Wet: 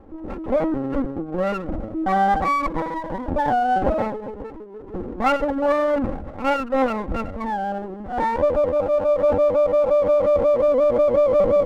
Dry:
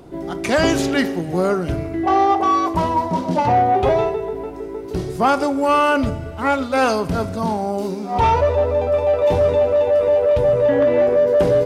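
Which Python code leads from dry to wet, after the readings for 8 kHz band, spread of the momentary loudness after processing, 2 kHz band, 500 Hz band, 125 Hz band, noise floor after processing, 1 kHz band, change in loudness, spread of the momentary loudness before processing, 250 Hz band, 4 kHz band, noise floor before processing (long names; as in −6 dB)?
below −10 dB, 12 LU, −5.5 dB, −2.5 dB, −9.0 dB, −36 dBFS, −4.0 dB, −3.0 dB, 9 LU, −4.0 dB, −10.5 dB, −30 dBFS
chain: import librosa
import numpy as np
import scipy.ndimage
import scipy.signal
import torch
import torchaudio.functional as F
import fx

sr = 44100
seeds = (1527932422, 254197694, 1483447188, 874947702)

y = scipy.signal.sosfilt(scipy.signal.ellip(4, 1.0, 40, 1400.0, 'lowpass', fs=sr, output='sos'), x)
y = fx.lpc_vocoder(y, sr, seeds[0], excitation='pitch_kept', order=8)
y = y + 0.57 * np.pad(y, (int(3.7 * sr / 1000.0), 0))[:len(y)]
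y = fx.running_max(y, sr, window=9)
y = y * librosa.db_to_amplitude(-4.0)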